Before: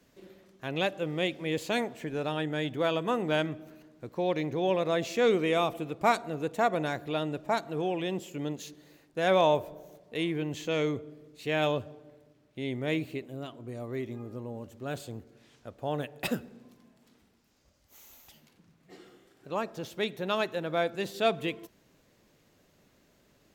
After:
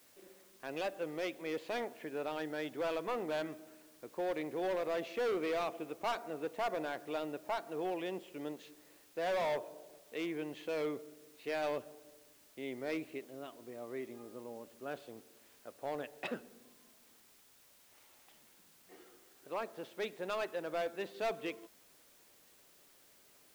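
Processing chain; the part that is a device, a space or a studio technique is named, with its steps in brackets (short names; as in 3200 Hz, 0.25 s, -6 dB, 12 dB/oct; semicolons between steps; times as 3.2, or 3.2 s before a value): aircraft radio (BPF 320–2700 Hz; hard clip -26.5 dBFS, distortion -9 dB; white noise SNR 24 dB); gain -4.5 dB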